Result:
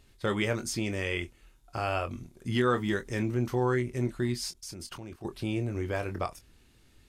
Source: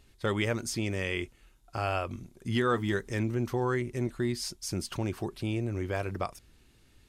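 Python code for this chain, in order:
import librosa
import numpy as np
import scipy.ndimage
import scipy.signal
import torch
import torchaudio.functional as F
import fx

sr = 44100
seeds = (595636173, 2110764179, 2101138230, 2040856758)

y = fx.level_steps(x, sr, step_db=21, at=(4.51, 5.25))
y = fx.doubler(y, sr, ms=24.0, db=-9)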